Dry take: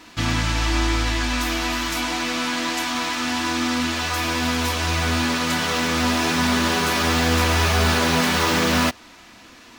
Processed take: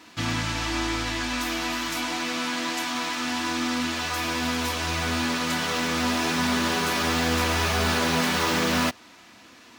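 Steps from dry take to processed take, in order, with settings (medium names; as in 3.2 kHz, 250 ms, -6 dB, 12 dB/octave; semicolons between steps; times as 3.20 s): high-pass 91 Hz 12 dB/octave; trim -4 dB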